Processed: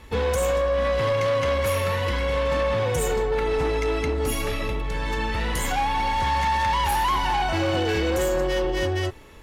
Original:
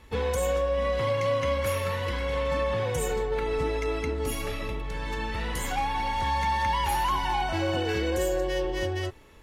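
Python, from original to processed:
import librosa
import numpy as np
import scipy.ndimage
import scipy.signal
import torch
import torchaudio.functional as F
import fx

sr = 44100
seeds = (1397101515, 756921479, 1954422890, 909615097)

y = fx.fold_sine(x, sr, drive_db=5, ceiling_db=-16.0)
y = y * 10.0 ** (-2.5 / 20.0)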